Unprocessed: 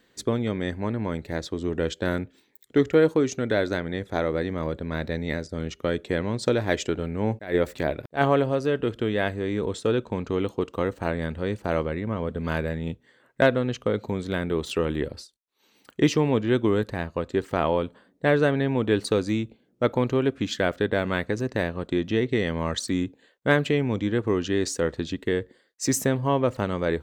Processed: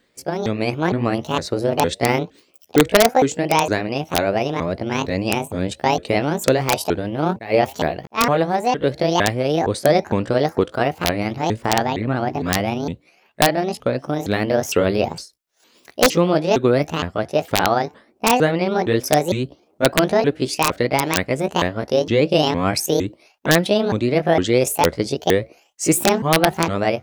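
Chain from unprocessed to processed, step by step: sawtooth pitch modulation +10 st, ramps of 460 ms; level rider gain up to 10.5 dB; integer overflow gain 3.5 dB

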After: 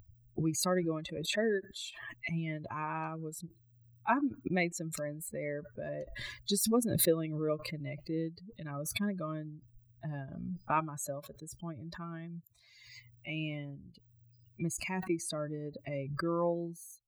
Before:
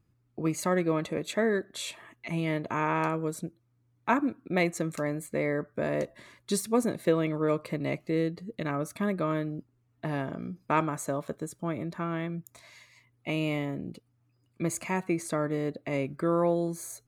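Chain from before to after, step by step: expander on every frequency bin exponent 2; swell ahead of each attack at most 41 dB/s; trim -1.5 dB

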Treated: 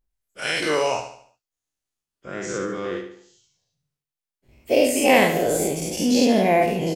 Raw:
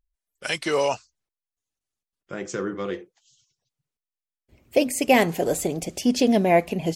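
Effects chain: every event in the spectrogram widened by 120 ms; on a send: feedback delay 73 ms, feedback 43%, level -9 dB; on the sum: trim -4 dB

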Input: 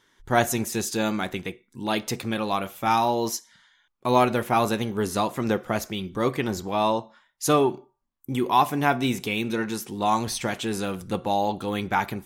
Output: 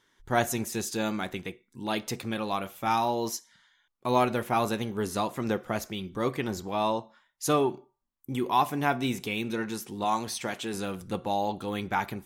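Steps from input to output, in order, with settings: 10.04–10.74 s: high-pass 190 Hz 6 dB/octave; trim -4.5 dB

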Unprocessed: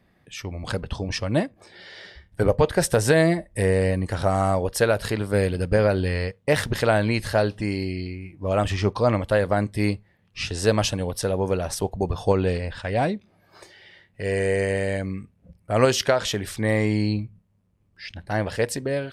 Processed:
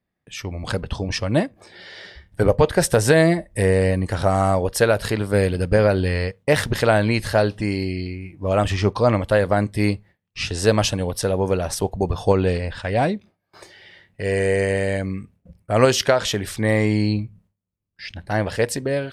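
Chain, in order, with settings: gate with hold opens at -47 dBFS; trim +3 dB

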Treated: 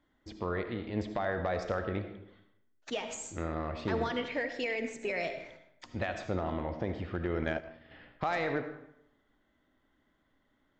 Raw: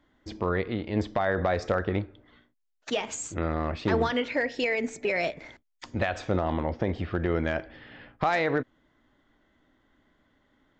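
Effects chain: algorithmic reverb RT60 0.8 s, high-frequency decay 0.7×, pre-delay 35 ms, DRR 7.5 dB; 7.42–7.91 s: transient shaper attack +12 dB, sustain -9 dB; trim -7 dB

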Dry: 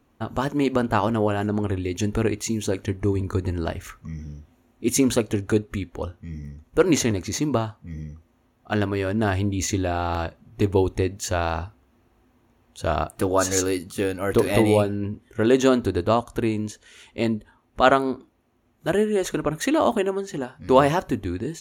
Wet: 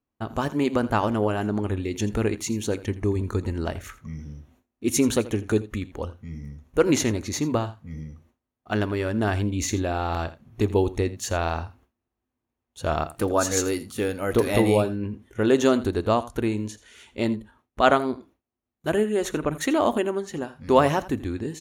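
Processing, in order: delay 83 ms -17 dB; gate with hold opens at -47 dBFS; trim -1.5 dB

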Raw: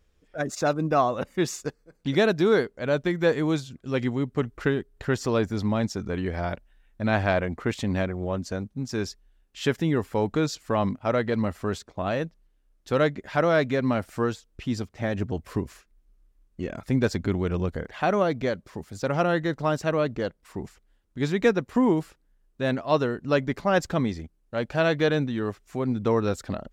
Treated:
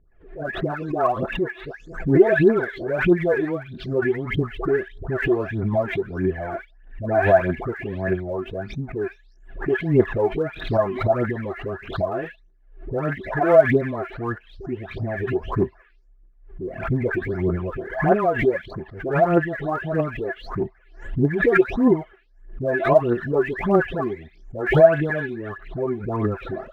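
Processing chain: delay that grows with frequency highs late, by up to 366 ms; low-pass 2.2 kHz 24 dB/octave; phaser 1.6 Hz, delay 3 ms, feedback 68%; small resonant body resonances 380/660/1700 Hz, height 11 dB, ringing for 75 ms; swell ahead of each attack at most 100 dB/s; trim -2.5 dB

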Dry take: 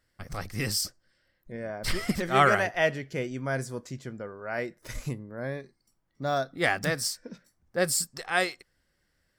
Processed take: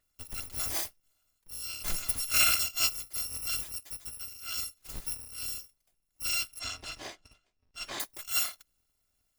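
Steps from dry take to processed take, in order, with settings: bit-reversed sample order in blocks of 256 samples; 6.59–8.00 s: distance through air 130 m; trim -3.5 dB

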